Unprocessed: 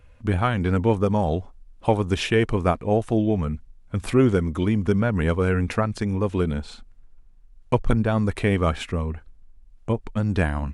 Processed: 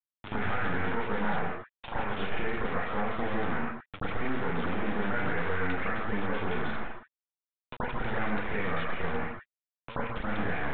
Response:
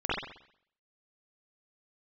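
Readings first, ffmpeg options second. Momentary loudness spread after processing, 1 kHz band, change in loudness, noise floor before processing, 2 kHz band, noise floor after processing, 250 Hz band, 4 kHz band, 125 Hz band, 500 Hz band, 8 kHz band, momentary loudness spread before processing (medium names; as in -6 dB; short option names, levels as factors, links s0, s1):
8 LU, -4.0 dB, -9.5 dB, -51 dBFS, -0.5 dB, under -85 dBFS, -11.5 dB, -8.0 dB, -15.5 dB, -11.0 dB, under -35 dB, 9 LU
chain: -filter_complex "[0:a]acompressor=threshold=0.0447:ratio=16,crystalizer=i=4.5:c=0,acrusher=bits=3:dc=4:mix=0:aa=0.000001,acrossover=split=350|1100[s0][s1][s2];[s0]acompressor=threshold=0.00398:ratio=4[s3];[s1]acompressor=threshold=0.00251:ratio=4[s4];[s2]acompressor=threshold=0.01:ratio=4[s5];[s3][s4][s5]amix=inputs=3:normalize=0[s6];[1:a]atrim=start_sample=2205,afade=t=out:st=0.21:d=0.01,atrim=end_sample=9702,asetrate=25578,aresample=44100[s7];[s6][s7]afir=irnorm=-1:irlink=0,volume=0.841" -ar 8000 -c:a adpcm_g726 -b:a 40k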